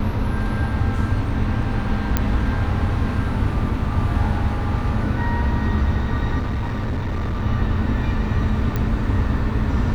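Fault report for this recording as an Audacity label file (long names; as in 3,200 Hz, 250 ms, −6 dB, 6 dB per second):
2.170000	2.170000	click −4 dBFS
6.390000	7.440000	clipping −20 dBFS
8.760000	8.760000	click −11 dBFS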